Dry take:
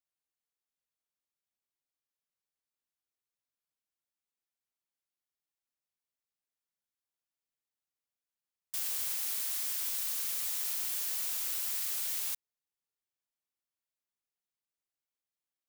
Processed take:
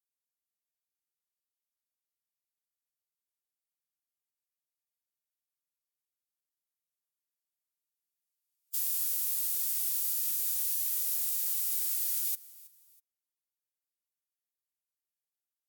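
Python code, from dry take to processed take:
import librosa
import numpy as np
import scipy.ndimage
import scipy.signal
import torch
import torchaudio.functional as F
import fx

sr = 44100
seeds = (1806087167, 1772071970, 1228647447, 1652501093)

p1 = scipy.signal.sosfilt(scipy.signal.butter(4, 94.0, 'highpass', fs=sr, output='sos'), x)
p2 = np.diff(p1, prepend=0.0)
p3 = p2 + 0.37 * np.pad(p2, (int(7.2 * sr / 1000.0), 0))[:len(p2)]
p4 = np.where(np.abs(p3) >= 10.0 ** (-34.5 / 20.0), p3, 0.0)
p5 = p3 + (p4 * librosa.db_to_amplitude(-8.0))
p6 = fx.pitch_keep_formants(p5, sr, semitones=-3.5)
p7 = p6 + fx.echo_feedback(p6, sr, ms=323, feedback_pct=33, wet_db=-21.0, dry=0)
y = p7 * librosa.db_to_amplitude(-4.0)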